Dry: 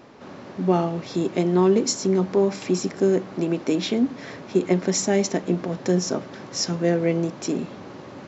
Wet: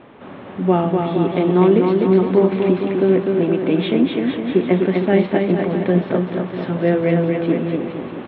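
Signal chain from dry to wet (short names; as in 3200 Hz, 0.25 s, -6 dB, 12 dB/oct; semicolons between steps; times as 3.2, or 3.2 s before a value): steep low-pass 3600 Hz 72 dB/oct; on a send: bouncing-ball echo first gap 0.25 s, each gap 0.85×, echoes 5; on the sum: gain +4 dB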